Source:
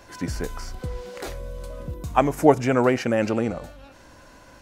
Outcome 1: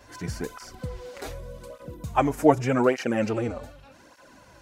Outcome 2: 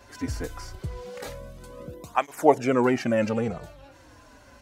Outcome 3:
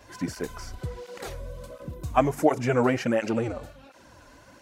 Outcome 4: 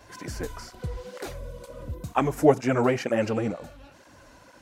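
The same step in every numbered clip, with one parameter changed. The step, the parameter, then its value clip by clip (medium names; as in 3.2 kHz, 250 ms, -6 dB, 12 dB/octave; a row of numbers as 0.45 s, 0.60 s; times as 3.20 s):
cancelling through-zero flanger, nulls at: 0.84 Hz, 0.22 Hz, 1.4 Hz, 2.1 Hz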